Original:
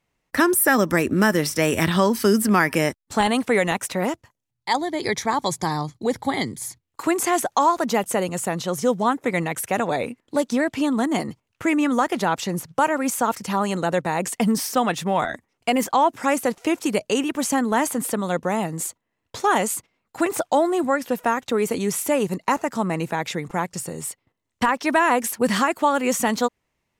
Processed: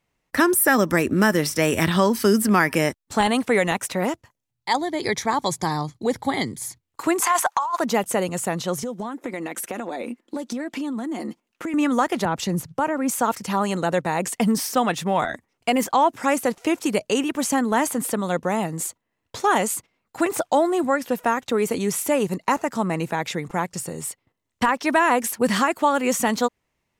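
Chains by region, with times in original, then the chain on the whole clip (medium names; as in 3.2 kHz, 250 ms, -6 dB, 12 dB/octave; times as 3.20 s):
7.22–7.80 s: resonant high-pass 1 kHz, resonance Q 3.4 + transient shaper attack -12 dB, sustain -2 dB + compressor with a negative ratio -21 dBFS
8.83–11.74 s: resonant low shelf 180 Hz -10 dB, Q 3 + comb 5.7 ms, depth 32% + compression 12:1, threshold -25 dBFS
12.25–13.12 s: bass shelf 330 Hz +8 dB + compression 2.5:1, threshold -19 dBFS + three bands expanded up and down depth 70%
whole clip: none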